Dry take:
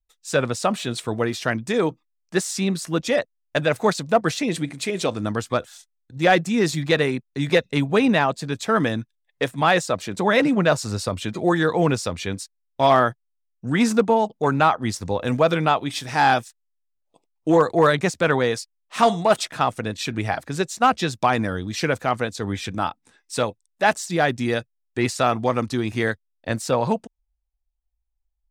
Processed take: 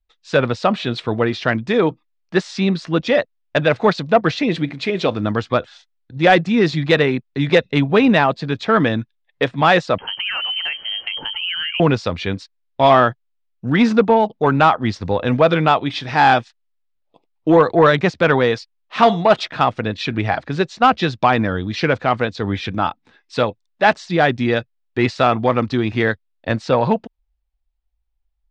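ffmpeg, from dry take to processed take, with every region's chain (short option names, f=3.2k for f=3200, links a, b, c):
-filter_complex "[0:a]asettb=1/sr,asplit=3[a][b][c];[a]atrim=end=9.984[d];[b]atrim=start=9.98:end=11.8,asetpts=PTS-STARTPTS,afade=t=in:d=0.004:c=qsin,afade=t=out:st=1.816:d=0.004:c=qsin,bandreject=f=60:t=h:w=6,bandreject=f=120:t=h:w=6,bandreject=f=180:t=h:w=6,bandreject=f=240:t=h:w=6,bandreject=f=300:t=h:w=6,bandreject=f=360:t=h:w=6,bandreject=f=420:t=h:w=6,lowpass=f=2.8k:t=q:w=0.5098,lowpass=f=2.8k:t=q:w=0.6013,lowpass=f=2.8k:t=q:w=0.9,lowpass=f=2.8k:t=q:w=2.563,afreqshift=-3300,acompressor=threshold=-25dB:ratio=10:attack=3.2:release=140:knee=1:detection=peak[e];[c]atrim=start=11.796[f];[d][e]acrossfade=d=0.004:c1=hsin:c2=qsin[g];[g][f]acrossfade=d=0.004:c1=qsin:c2=hsin,lowpass=f=4.3k:w=0.5412,lowpass=f=4.3k:w=1.3066,acontrast=33"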